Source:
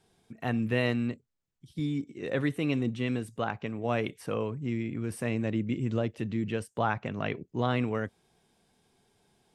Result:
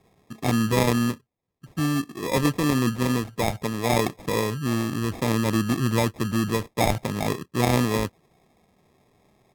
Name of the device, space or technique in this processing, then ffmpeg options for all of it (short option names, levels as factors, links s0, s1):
crushed at another speed: -af "highpass=44,asetrate=55125,aresample=44100,acrusher=samples=24:mix=1:aa=0.000001,asetrate=35280,aresample=44100,volume=2.24"